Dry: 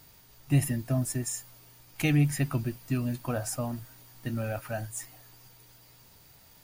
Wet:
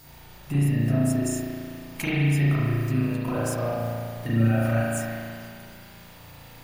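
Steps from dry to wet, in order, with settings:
0:03.08–0:03.80: mu-law and A-law mismatch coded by A
downward compressor 5 to 1, threshold −34 dBFS, peak gain reduction 14.5 dB
spring reverb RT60 2.3 s, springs 35 ms, chirp 40 ms, DRR −9 dB
level +4 dB

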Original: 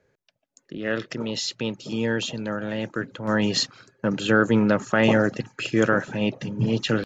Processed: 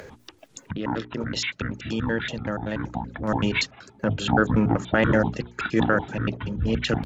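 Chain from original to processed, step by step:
pitch shifter gated in a rhythm −11 semitones, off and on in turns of 95 ms
mains-hum notches 60/120/180/240/300/360/420 Hz
upward compression, threshold −24 dBFS

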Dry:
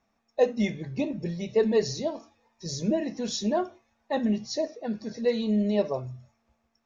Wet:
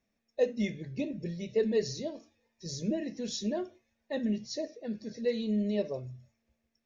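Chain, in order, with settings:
flat-topped bell 1,000 Hz −10.5 dB 1.2 octaves
level −5 dB

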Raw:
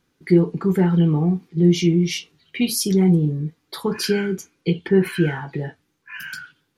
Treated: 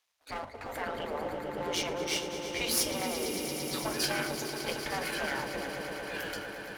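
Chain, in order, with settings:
gain on one half-wave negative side −12 dB
echo that builds up and dies away 113 ms, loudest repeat 5, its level −13 dB
gate on every frequency bin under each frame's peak −20 dB weak
level −1.5 dB

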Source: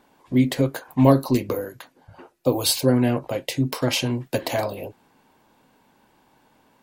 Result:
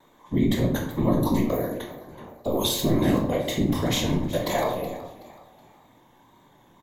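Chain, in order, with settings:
EQ curve with evenly spaced ripples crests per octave 1.1, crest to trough 11 dB
brickwall limiter −15.5 dBFS, peak gain reduction 15.5 dB
random phases in short frames
tape wow and flutter 53 cents
hollow resonant body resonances 730/2,200/3,700 Hz, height 6 dB
echo with shifted repeats 374 ms, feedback 36%, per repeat +55 Hz, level −17 dB
on a send at −1.5 dB: convolution reverb RT60 0.70 s, pre-delay 17 ms
on the sum: level −2.5 dB

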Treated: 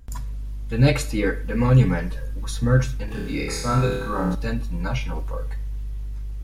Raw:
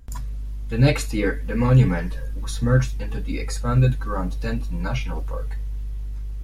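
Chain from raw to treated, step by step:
0:03.05–0:04.35: flutter between parallel walls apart 4.8 metres, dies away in 0.79 s
on a send at −18 dB: convolution reverb RT60 0.55 s, pre-delay 48 ms

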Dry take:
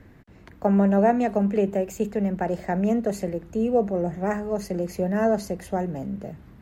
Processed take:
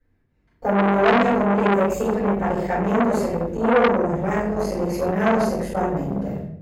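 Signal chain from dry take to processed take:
noise gate −41 dBFS, range −25 dB
rectangular room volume 120 cubic metres, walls mixed, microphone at 4.8 metres
saturating transformer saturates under 1,400 Hz
level −7.5 dB

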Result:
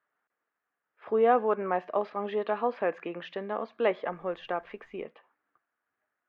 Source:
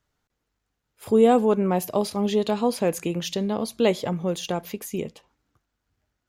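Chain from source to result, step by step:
loudspeaker in its box 400–2,500 Hz, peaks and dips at 680 Hz +3 dB, 1,200 Hz +7 dB, 1,700 Hz +8 dB
0:04.11–0:05.03: background noise brown −63 dBFS
level −4.5 dB

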